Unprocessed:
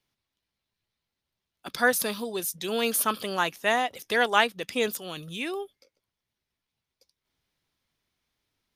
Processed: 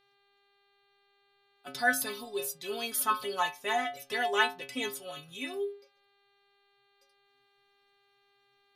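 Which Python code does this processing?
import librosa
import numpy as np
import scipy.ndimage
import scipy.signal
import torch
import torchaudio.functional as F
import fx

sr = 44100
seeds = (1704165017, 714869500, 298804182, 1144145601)

y = fx.stiff_resonator(x, sr, f0_hz=130.0, decay_s=0.4, stiffness=0.008)
y = fx.dmg_buzz(y, sr, base_hz=400.0, harmonics=11, level_db=-77.0, tilt_db=-2, odd_only=False)
y = F.gain(torch.from_numpy(y), 7.0).numpy()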